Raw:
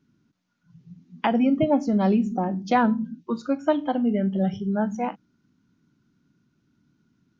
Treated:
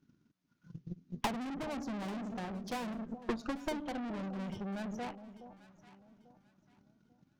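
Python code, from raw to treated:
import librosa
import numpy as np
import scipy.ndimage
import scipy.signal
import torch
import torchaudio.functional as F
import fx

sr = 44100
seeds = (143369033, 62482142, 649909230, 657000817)

y = fx.tube_stage(x, sr, drive_db=36.0, bias=0.65)
y = fx.transient(y, sr, attack_db=12, sustain_db=-4)
y = fx.echo_alternate(y, sr, ms=421, hz=820.0, feedback_pct=53, wet_db=-11.0)
y = F.gain(torch.from_numpy(y), -3.0).numpy()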